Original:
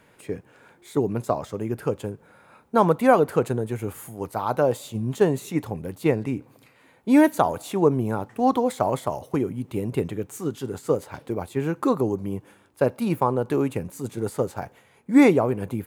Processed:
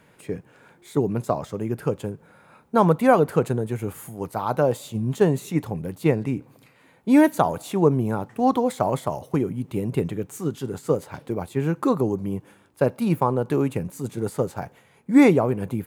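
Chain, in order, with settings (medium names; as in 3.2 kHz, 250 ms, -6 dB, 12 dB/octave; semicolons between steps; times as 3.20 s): peaking EQ 160 Hz +5 dB 0.7 oct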